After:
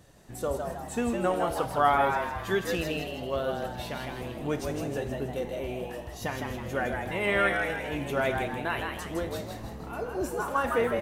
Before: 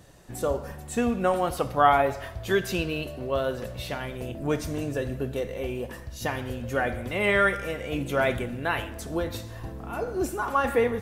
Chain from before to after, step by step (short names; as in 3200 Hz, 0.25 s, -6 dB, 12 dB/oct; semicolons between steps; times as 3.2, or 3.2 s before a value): frequency-shifting echo 0.16 s, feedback 46%, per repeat +110 Hz, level -5 dB; gain -4 dB